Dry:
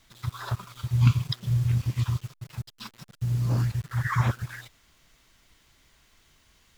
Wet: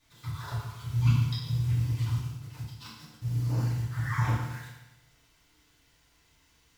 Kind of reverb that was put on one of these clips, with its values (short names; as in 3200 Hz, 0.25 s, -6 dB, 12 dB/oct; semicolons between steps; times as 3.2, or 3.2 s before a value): FDN reverb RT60 1 s, low-frequency decay 1×, high-frequency decay 0.95×, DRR -9.5 dB; gain -13 dB